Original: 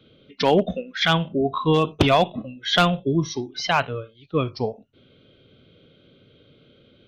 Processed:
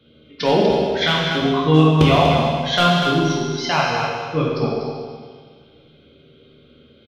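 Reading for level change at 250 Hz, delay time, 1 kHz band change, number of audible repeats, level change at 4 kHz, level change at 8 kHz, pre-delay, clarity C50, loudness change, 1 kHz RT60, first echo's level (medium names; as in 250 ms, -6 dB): +5.5 dB, 243 ms, +4.0 dB, 1, +4.0 dB, +4.0 dB, 13 ms, -1.5 dB, +4.5 dB, 1.7 s, -6.5 dB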